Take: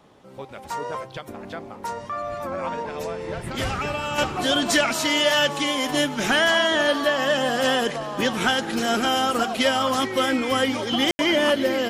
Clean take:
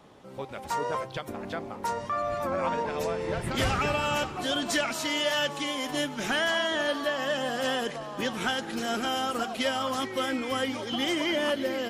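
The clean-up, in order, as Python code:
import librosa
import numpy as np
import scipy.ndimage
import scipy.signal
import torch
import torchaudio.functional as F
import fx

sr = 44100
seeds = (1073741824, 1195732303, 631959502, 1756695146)

y = fx.fix_ambience(x, sr, seeds[0], print_start_s=0.0, print_end_s=0.5, start_s=11.11, end_s=11.19)
y = fx.fix_level(y, sr, at_s=4.18, step_db=-7.5)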